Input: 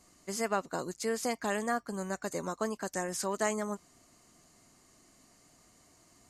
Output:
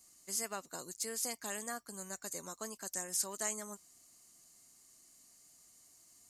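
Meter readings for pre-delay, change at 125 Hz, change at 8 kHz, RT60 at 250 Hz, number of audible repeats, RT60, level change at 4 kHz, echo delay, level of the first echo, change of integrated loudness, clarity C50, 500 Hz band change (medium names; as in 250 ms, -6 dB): no reverb, -13.0 dB, +3.0 dB, no reverb, no echo, no reverb, -1.5 dB, no echo, no echo, -4.5 dB, no reverb, -12.5 dB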